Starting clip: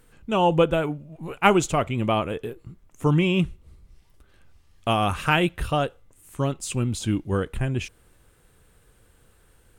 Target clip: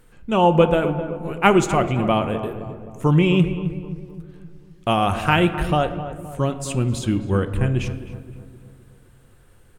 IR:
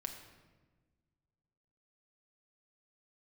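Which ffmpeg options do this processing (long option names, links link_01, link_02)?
-filter_complex "[0:a]asplit=2[link_01][link_02];[link_02]adelay=260,lowpass=frequency=1400:poles=1,volume=-11dB,asplit=2[link_03][link_04];[link_04]adelay=260,lowpass=frequency=1400:poles=1,volume=0.53,asplit=2[link_05][link_06];[link_06]adelay=260,lowpass=frequency=1400:poles=1,volume=0.53,asplit=2[link_07][link_08];[link_08]adelay=260,lowpass=frequency=1400:poles=1,volume=0.53,asplit=2[link_09][link_10];[link_10]adelay=260,lowpass=frequency=1400:poles=1,volume=0.53,asplit=2[link_11][link_12];[link_12]adelay=260,lowpass=frequency=1400:poles=1,volume=0.53[link_13];[link_01][link_03][link_05][link_07][link_09][link_11][link_13]amix=inputs=7:normalize=0,asplit=2[link_14][link_15];[1:a]atrim=start_sample=2205,asetrate=41895,aresample=44100,highshelf=frequency=3700:gain=-10[link_16];[link_15][link_16]afir=irnorm=-1:irlink=0,volume=2dB[link_17];[link_14][link_17]amix=inputs=2:normalize=0,volume=-2.5dB"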